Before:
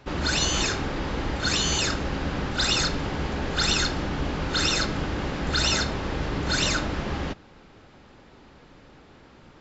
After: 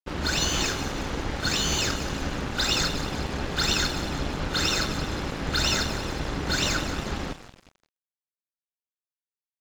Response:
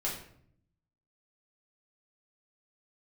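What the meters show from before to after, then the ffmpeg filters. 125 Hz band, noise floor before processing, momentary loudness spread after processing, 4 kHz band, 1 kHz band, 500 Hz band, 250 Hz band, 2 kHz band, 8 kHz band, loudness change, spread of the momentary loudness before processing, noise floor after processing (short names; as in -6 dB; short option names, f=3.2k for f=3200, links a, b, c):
-1.5 dB, -52 dBFS, 7 LU, -1.0 dB, -1.0 dB, -1.5 dB, -1.5 dB, -1.0 dB, n/a, -1.0 dB, 7 LU, under -85 dBFS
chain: -filter_complex "[0:a]asplit=8[a][b][c][d][e][f][g][h];[b]adelay=179,afreqshift=-41,volume=-11dB[i];[c]adelay=358,afreqshift=-82,volume=-15.3dB[j];[d]adelay=537,afreqshift=-123,volume=-19.6dB[k];[e]adelay=716,afreqshift=-164,volume=-23.9dB[l];[f]adelay=895,afreqshift=-205,volume=-28.2dB[m];[g]adelay=1074,afreqshift=-246,volume=-32.5dB[n];[h]adelay=1253,afreqshift=-287,volume=-36.8dB[o];[a][i][j][k][l][m][n][o]amix=inputs=8:normalize=0,aeval=exprs='sgn(val(0))*max(abs(val(0))-0.0133,0)':c=same"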